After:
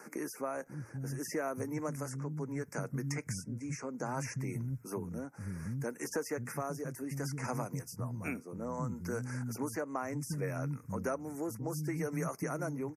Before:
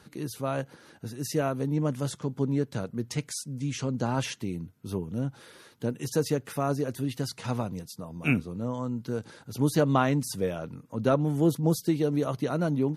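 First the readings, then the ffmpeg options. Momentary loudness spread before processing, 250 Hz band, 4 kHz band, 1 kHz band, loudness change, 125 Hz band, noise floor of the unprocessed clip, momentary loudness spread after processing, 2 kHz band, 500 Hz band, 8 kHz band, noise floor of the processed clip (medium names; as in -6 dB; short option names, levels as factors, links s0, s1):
11 LU, -10.0 dB, -12.5 dB, -7.5 dB, -9.0 dB, -8.0 dB, -57 dBFS, 4 LU, -5.5 dB, -9.0 dB, -4.5 dB, -54 dBFS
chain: -filter_complex "[0:a]asuperstop=centerf=3500:order=8:qfactor=1.2,acrossover=split=230[s0][s1];[s0]adelay=540[s2];[s2][s1]amix=inputs=2:normalize=0,tremolo=f=0.65:d=0.65,acrossover=split=1100|3500[s3][s4][s5];[s3]acompressor=threshold=0.00631:ratio=4[s6];[s4]acompressor=threshold=0.00282:ratio=4[s7];[s5]acompressor=threshold=0.002:ratio=4[s8];[s6][s7][s8]amix=inputs=3:normalize=0,volume=2.24"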